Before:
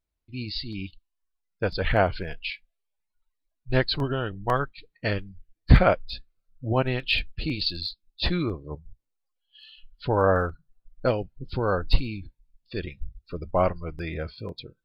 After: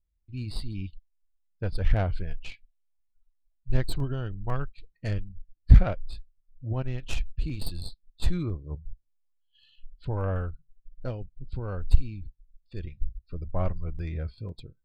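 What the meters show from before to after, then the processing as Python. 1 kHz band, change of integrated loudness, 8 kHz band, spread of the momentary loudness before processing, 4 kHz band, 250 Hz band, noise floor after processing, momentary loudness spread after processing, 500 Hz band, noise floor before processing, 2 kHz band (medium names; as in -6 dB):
-12.5 dB, -4.0 dB, no reading, 16 LU, -14.0 dB, -6.0 dB, -72 dBFS, 14 LU, -11.5 dB, -80 dBFS, -13.0 dB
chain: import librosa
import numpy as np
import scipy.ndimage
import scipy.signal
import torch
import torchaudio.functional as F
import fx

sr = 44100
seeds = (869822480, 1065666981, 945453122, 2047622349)

y = fx.tracing_dist(x, sr, depth_ms=0.11)
y = fx.low_shelf(y, sr, hz=91.0, db=9.0)
y = fx.rider(y, sr, range_db=4, speed_s=2.0)
y = fx.low_shelf(y, sr, hz=220.0, db=11.5)
y = fx.transformer_sat(y, sr, knee_hz=40.0)
y = F.gain(torch.from_numpy(y), -14.5).numpy()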